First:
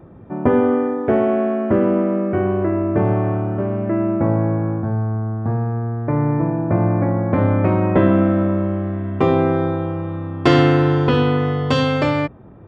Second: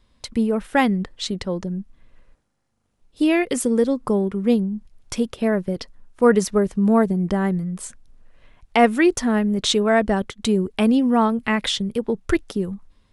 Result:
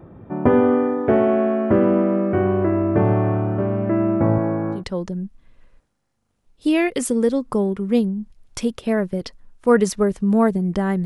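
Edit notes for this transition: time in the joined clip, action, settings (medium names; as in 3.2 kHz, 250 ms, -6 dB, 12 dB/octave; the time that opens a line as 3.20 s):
first
4.38–4.84 s: high-pass 180 Hz 12 dB/octave
4.78 s: go over to second from 1.33 s, crossfade 0.12 s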